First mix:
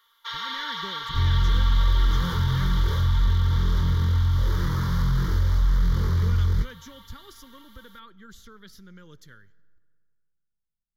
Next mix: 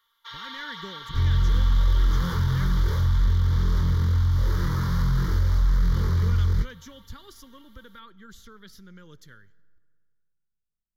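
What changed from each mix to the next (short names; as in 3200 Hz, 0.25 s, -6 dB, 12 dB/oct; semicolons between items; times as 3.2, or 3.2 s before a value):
first sound -7.0 dB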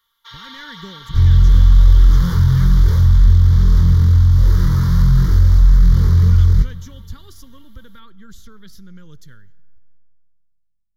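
second sound: send +11.5 dB; master: add tone controls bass +9 dB, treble +5 dB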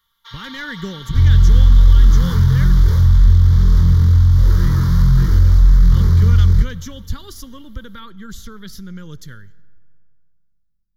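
speech +8.5 dB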